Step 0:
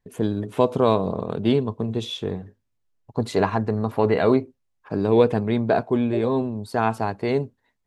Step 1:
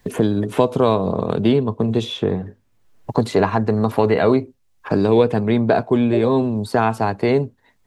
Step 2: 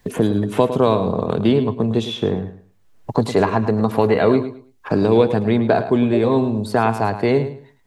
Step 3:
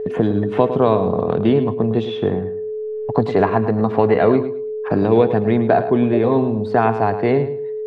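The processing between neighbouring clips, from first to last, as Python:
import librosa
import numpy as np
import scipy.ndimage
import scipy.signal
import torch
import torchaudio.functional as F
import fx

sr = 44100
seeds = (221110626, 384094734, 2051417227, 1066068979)

y1 = fx.band_squash(x, sr, depth_pct=70)
y1 = y1 * 10.0 ** (4.0 / 20.0)
y2 = fx.echo_feedback(y1, sr, ms=107, feedback_pct=23, wet_db=-11.5)
y3 = y2 + 10.0 ** (-23.0 / 20.0) * np.sin(2.0 * np.pi * 430.0 * np.arange(len(y2)) / sr)
y3 = scipy.signal.sosfilt(scipy.signal.butter(2, 2700.0, 'lowpass', fs=sr, output='sos'), y3)
y3 = fx.small_body(y3, sr, hz=(720.0, 1800.0), ring_ms=45, db=6)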